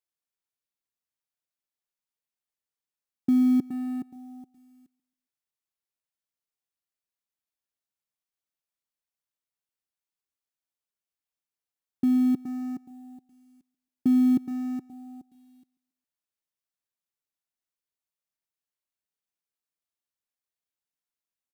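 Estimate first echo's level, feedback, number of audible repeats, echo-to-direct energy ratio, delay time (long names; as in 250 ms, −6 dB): −22.5 dB, 37%, 2, −22.0 dB, 137 ms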